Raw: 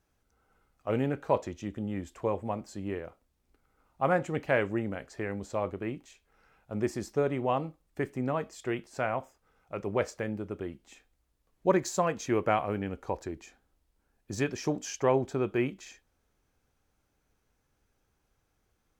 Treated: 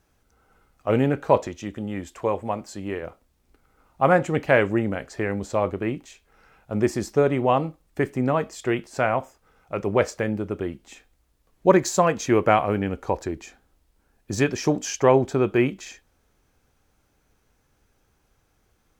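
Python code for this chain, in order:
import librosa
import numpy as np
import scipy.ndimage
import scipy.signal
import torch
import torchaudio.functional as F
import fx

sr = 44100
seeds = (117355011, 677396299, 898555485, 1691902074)

y = fx.low_shelf(x, sr, hz=430.0, db=-6.0, at=(1.47, 3.03))
y = y * librosa.db_to_amplitude(8.5)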